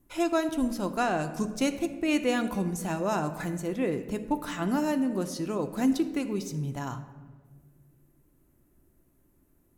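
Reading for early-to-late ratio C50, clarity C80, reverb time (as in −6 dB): 11.0 dB, 12.5 dB, 1.5 s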